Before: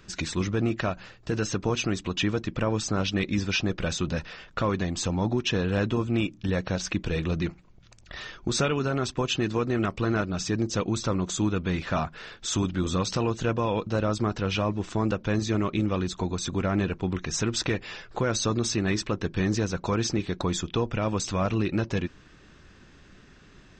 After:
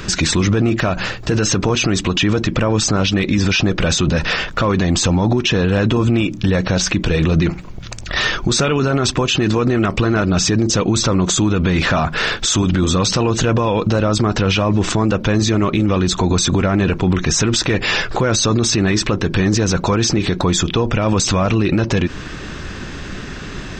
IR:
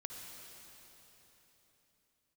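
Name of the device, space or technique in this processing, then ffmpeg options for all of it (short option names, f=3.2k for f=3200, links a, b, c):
loud club master: -af "acompressor=threshold=-31dB:ratio=1.5,asoftclip=type=hard:threshold=-19.5dB,alimiter=level_in=31dB:limit=-1dB:release=50:level=0:latency=1,volume=-7dB"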